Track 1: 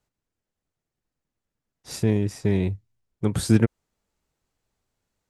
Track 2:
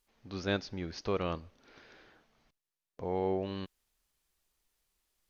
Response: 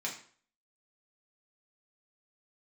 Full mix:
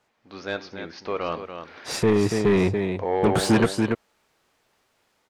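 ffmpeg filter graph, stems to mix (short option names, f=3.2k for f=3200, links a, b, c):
-filter_complex "[0:a]volume=-5dB,asplit=2[a][b];[b]volume=-9.5dB[c];[1:a]dynaudnorm=f=190:g=3:m=5dB,volume=-11.5dB,afade=t=in:st=1.09:d=0.5:silence=0.421697,asplit=3[d][e][f];[e]volume=-13dB[g];[f]volume=-8.5dB[h];[2:a]atrim=start_sample=2205[i];[g][i]afir=irnorm=-1:irlink=0[j];[c][h]amix=inputs=2:normalize=0,aecho=0:1:285:1[k];[a][d][j][k]amix=inputs=4:normalize=0,asplit=2[l][m];[m]highpass=f=720:p=1,volume=28dB,asoftclip=type=tanh:threshold=-8dB[n];[l][n]amix=inputs=2:normalize=0,lowpass=f=1.8k:p=1,volume=-6dB"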